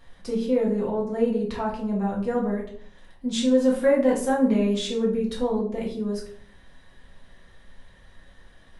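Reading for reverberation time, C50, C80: 0.55 s, 6.5 dB, 11.5 dB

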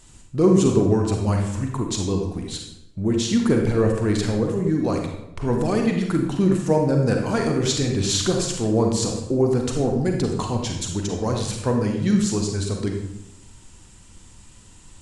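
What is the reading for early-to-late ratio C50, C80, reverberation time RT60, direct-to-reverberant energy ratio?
3.5 dB, 6.5 dB, 0.85 s, 2.0 dB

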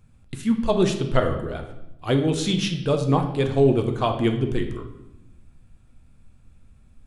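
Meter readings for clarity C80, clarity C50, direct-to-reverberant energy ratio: 11.5 dB, 8.5 dB, 4.5 dB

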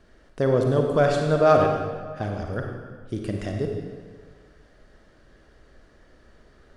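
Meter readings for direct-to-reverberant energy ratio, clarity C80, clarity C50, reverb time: 2.0 dB, 4.5 dB, 3.0 dB, 1.7 s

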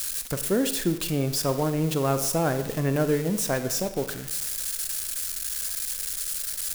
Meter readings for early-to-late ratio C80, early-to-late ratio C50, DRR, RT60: 13.0 dB, 10.5 dB, 9.5 dB, 0.90 s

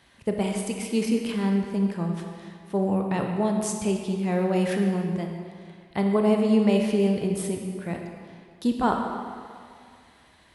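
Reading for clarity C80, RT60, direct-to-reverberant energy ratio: 5.0 dB, 2.2 s, 2.0 dB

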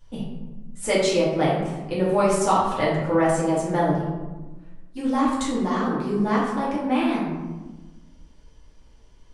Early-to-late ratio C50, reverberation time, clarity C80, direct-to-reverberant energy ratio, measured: 1.0 dB, 1.2 s, 4.5 dB, -8.0 dB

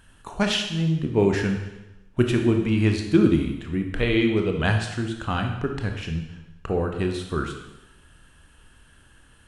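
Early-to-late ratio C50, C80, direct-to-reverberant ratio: 6.0 dB, 8.5 dB, 3.5 dB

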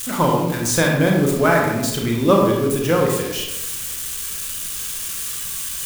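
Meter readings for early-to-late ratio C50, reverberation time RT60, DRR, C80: 2.5 dB, 1.0 s, -0.5 dB, 4.5 dB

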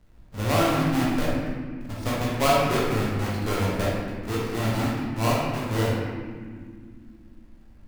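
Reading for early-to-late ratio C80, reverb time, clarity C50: 1.0 dB, 2.0 s, -2.0 dB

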